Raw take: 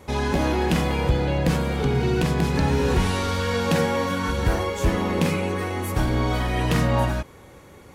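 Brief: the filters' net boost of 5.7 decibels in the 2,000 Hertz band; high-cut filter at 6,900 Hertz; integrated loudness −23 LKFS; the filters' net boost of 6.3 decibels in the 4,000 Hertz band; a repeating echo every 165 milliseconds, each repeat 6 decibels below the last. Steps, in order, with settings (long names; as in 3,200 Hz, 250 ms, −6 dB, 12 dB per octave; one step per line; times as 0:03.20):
low-pass filter 6,900 Hz
parametric band 2,000 Hz +5.5 dB
parametric band 4,000 Hz +6.5 dB
repeating echo 165 ms, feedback 50%, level −6 dB
level −2 dB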